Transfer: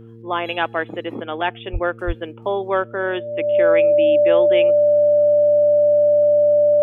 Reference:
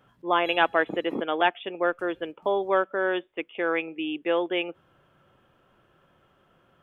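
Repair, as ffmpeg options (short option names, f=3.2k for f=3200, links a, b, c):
-filter_complex "[0:a]bandreject=f=114.2:t=h:w=4,bandreject=f=228.4:t=h:w=4,bandreject=f=342.6:t=h:w=4,bandreject=f=456.8:t=h:w=4,bandreject=f=590:w=30,asplit=3[a][b][c];[a]afade=t=out:st=1.72:d=0.02[d];[b]highpass=f=140:w=0.5412,highpass=f=140:w=1.3066,afade=t=in:st=1.72:d=0.02,afade=t=out:st=1.84:d=0.02[e];[c]afade=t=in:st=1.84:d=0.02[f];[d][e][f]amix=inputs=3:normalize=0,asplit=3[g][h][i];[g]afade=t=out:st=2.06:d=0.02[j];[h]highpass=f=140:w=0.5412,highpass=f=140:w=1.3066,afade=t=in:st=2.06:d=0.02,afade=t=out:st=2.18:d=0.02[k];[i]afade=t=in:st=2.18:d=0.02[l];[j][k][l]amix=inputs=3:normalize=0,asetnsamples=n=441:p=0,asendcmd='1.48 volume volume -3dB',volume=0dB"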